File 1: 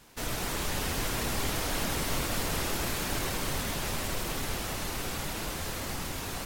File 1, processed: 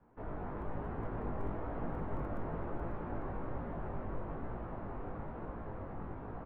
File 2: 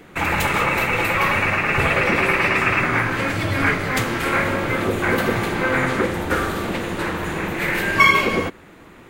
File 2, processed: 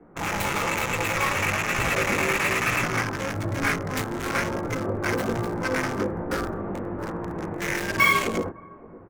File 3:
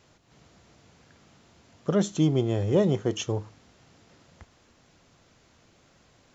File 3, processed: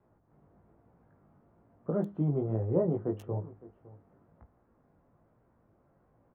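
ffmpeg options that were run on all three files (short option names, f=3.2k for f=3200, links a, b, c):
-filter_complex "[0:a]flanger=delay=17:depth=3.6:speed=1.1,asplit=2[a][b];[b]adelay=559.8,volume=-19dB,highshelf=f=4k:g=-12.6[c];[a][c]amix=inputs=2:normalize=0,acrossover=split=100|670|1300[d][e][f][g];[g]acrusher=bits=3:mix=0:aa=0.5[h];[d][e][f][h]amix=inputs=4:normalize=0,volume=-2.5dB"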